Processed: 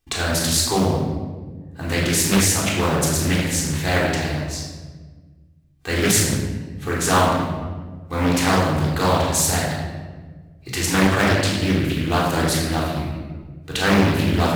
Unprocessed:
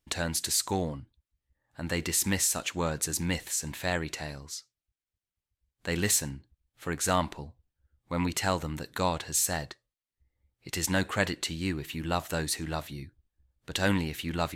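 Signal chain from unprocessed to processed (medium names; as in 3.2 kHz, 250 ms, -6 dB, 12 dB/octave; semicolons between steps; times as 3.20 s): block-companded coder 5-bit; simulated room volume 1200 m³, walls mixed, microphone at 3.7 m; loudspeaker Doppler distortion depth 0.83 ms; trim +3.5 dB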